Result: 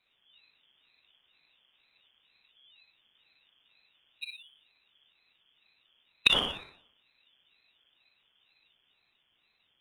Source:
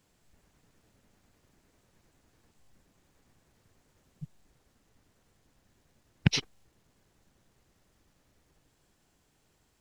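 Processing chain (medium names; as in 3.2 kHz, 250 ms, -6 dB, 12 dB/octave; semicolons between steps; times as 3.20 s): frequency inversion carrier 3.3 kHz; waveshaping leveller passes 1; flutter echo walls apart 10.3 m, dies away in 0.56 s; on a send at -3.5 dB: reverberation RT60 0.55 s, pre-delay 28 ms; on the sum: ring modulator with a swept carrier 410 Hz, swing 85%, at 2.1 Hz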